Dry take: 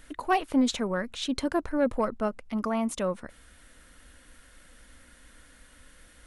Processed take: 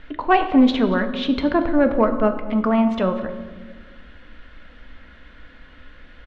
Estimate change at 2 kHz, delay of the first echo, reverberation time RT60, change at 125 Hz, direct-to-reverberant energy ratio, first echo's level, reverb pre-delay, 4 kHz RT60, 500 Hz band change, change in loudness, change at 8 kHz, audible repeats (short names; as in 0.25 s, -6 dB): +9.0 dB, 0.233 s, 1.4 s, +10.0 dB, 7.0 dB, -21.0 dB, 3 ms, 0.95 s, +9.0 dB, +9.5 dB, under -15 dB, 1